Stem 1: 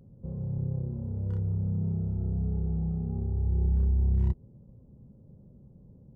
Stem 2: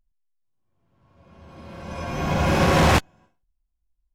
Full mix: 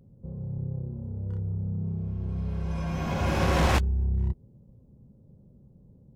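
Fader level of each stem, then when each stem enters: −1.5, −7.5 decibels; 0.00, 0.80 seconds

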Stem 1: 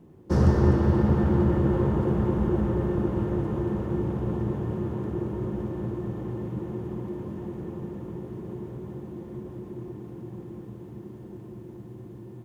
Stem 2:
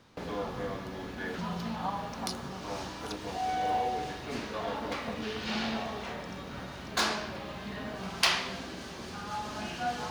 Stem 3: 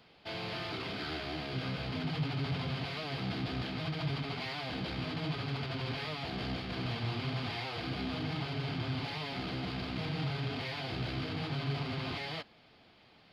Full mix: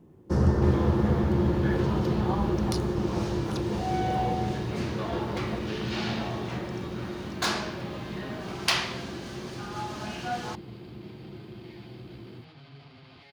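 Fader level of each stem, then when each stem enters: −2.5, +0.5, −14.5 decibels; 0.00, 0.45, 1.05 seconds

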